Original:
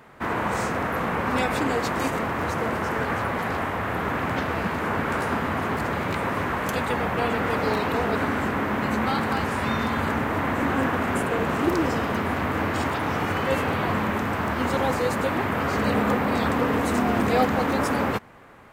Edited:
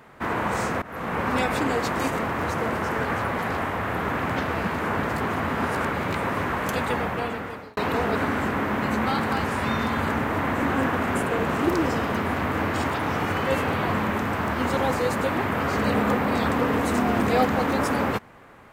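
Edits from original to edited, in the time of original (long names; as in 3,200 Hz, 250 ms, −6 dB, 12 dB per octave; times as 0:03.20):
0:00.82–0:01.20: fade in, from −21 dB
0:05.03–0:05.94: reverse
0:06.94–0:07.77: fade out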